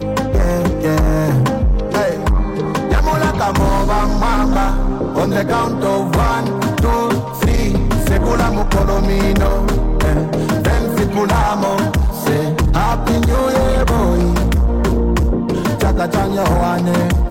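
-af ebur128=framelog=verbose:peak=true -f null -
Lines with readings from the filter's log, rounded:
Integrated loudness:
  I:         -16.1 LUFS
  Threshold: -26.1 LUFS
Loudness range:
  LRA:         1.0 LU
  Threshold: -36.1 LUFS
  LRA low:   -16.5 LUFS
  LRA high:  -15.5 LUFS
True peak:
  Peak:       -9.1 dBFS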